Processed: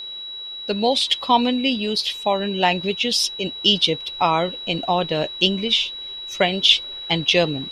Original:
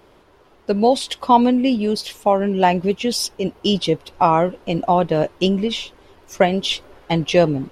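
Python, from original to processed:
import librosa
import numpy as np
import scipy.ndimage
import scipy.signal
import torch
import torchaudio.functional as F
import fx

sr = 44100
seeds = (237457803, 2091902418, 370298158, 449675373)

y = fx.peak_eq(x, sr, hz=3400.0, db=14.5, octaves=1.5)
y = y + 10.0 ** (-25.0 / 20.0) * np.sin(2.0 * np.pi * 3900.0 * np.arange(len(y)) / sr)
y = y * librosa.db_to_amplitude(-5.5)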